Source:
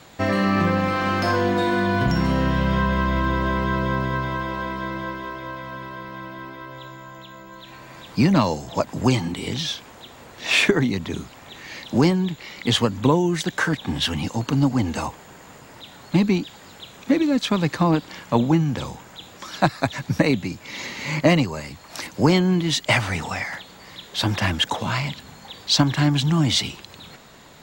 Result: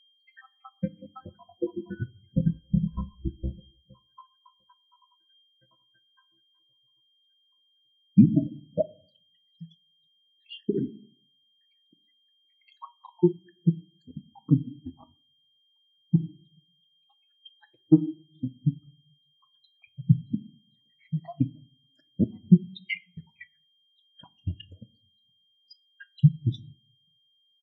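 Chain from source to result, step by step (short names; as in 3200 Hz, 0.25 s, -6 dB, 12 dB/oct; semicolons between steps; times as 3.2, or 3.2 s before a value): random spectral dropouts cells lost 81%; reverb removal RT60 1 s; transient shaper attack +10 dB, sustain -11 dB; whine 3200 Hz -32 dBFS; in parallel at -6 dB: soft clip -4.5 dBFS, distortion -14 dB; 3.6–5.29 on the sum: rippled Chebyshev low-pass 4500 Hz, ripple 9 dB; on a send: frequency-shifting echo 0.122 s, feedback 34%, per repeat -56 Hz, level -24 dB; on the sum: shoebox room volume 450 m³, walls mixed, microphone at 0.59 m; maximiser -1 dB; spectral expander 2.5:1; gain -3.5 dB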